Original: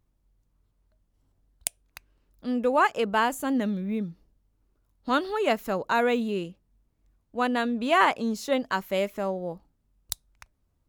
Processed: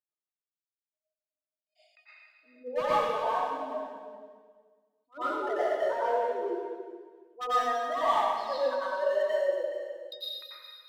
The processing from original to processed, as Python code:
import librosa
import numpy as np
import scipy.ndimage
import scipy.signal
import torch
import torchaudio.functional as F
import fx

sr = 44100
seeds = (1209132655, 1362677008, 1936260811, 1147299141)

p1 = fx.spec_expand(x, sr, power=2.9)
p2 = scipy.signal.sosfilt(scipy.signal.cheby1(5, 1.0, [320.0, 4800.0], 'bandpass', fs=sr, output='sos'), p1)
p3 = fx.hum_notches(p2, sr, base_hz=60, count=10)
p4 = fx.rider(p3, sr, range_db=10, speed_s=0.5)
p5 = p3 + F.gain(torch.from_numpy(p4), -1.0).numpy()
p6 = fx.comb_fb(p5, sr, f0_hz=620.0, decay_s=0.17, harmonics='all', damping=0.0, mix_pct=90)
p7 = np.clip(10.0 ** (31.5 / 20.0) * p6, -1.0, 1.0) / 10.0 ** (31.5 / 20.0)
p8 = p7 + 10.0 ** (-13.5 / 20.0) * np.pad(p7, (int(420 * sr / 1000.0), 0))[:len(p7)]
p9 = fx.rev_plate(p8, sr, seeds[0], rt60_s=1.5, hf_ratio=1.0, predelay_ms=80, drr_db=-10.0)
y = fx.attack_slew(p9, sr, db_per_s=330.0)